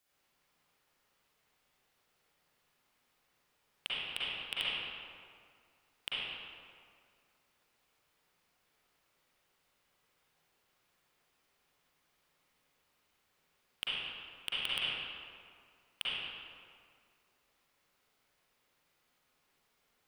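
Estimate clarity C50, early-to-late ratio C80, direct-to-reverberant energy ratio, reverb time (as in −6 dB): −7.0 dB, −3.0 dB, −10.5 dB, 2.1 s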